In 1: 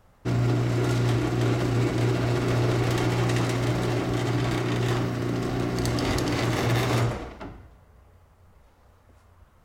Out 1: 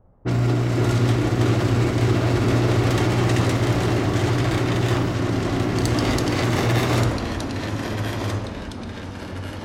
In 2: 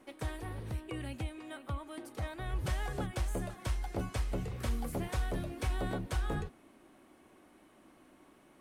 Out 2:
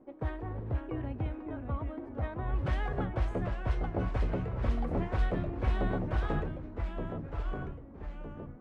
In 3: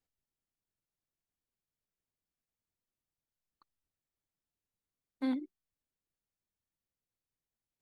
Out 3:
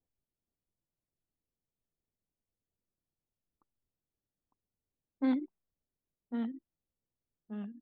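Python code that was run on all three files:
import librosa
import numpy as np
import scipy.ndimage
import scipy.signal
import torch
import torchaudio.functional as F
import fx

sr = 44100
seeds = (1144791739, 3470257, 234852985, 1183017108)

y = fx.env_lowpass(x, sr, base_hz=610.0, full_db=-22.5)
y = fx.echo_pitch(y, sr, ms=462, semitones=-2, count=3, db_per_echo=-6.0)
y = y * 10.0 ** (3.5 / 20.0)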